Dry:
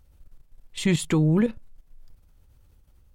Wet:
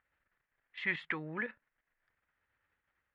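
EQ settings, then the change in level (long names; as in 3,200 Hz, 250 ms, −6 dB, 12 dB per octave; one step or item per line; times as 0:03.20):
resonant band-pass 1,800 Hz, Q 3.9
high-frequency loss of the air 300 metres
+7.0 dB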